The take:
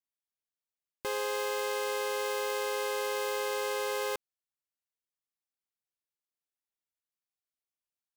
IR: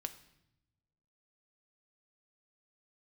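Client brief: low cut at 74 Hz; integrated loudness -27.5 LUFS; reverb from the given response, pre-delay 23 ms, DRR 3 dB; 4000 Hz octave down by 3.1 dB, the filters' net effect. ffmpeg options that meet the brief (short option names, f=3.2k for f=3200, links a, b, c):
-filter_complex "[0:a]highpass=74,equalizer=f=4k:t=o:g=-4,asplit=2[a][b];[1:a]atrim=start_sample=2205,adelay=23[c];[b][c]afir=irnorm=-1:irlink=0,volume=-1dB[d];[a][d]amix=inputs=2:normalize=0,volume=3dB"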